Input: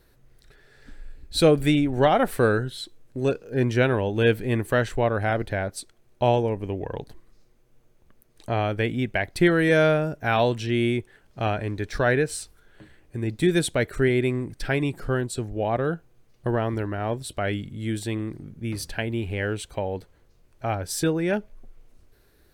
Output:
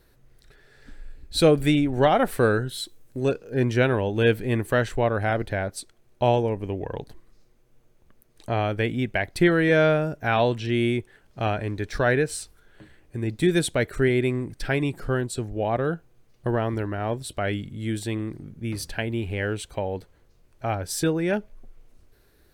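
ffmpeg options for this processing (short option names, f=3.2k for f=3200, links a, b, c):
-filter_complex "[0:a]asettb=1/sr,asplit=3[a][b][c];[a]atrim=end=2.694[d];[b]atrim=start=2.69:end=3.19,asetpts=PTS-STARTPTS,afade=t=in:d=0.004:c=qsin,afade=t=out:st=0.496:d=0.004:c=qsin,highshelf=f=7.3k:g=11.5[e];[c]atrim=start=3.186[f];[d][e]acrossfade=d=0.004:c1=hsin:c2=qsin[g];[g][f]acrossfade=d=0.004:c1=qsin:c2=hsin,asettb=1/sr,asplit=3[h][i][j];[h]atrim=end=9.434[k];[i]atrim=start=9.43:end=10.65,asetpts=PTS-STARTPTS,afade=t=in:d=0.004:c=qsin,afade=t=out:st=1.216:d=0.004:c=qsin,acrossover=split=5100[l][m];[m]acompressor=threshold=-54dB:ratio=4:attack=1:release=60[n];[l][n]amix=inputs=2:normalize=0[o];[j]atrim=start=10.646[p];[k][o]acrossfade=d=0.004:c1=hsin:c2=qsin[q];[q][p]acrossfade=d=0.004:c1=qsin:c2=hsin"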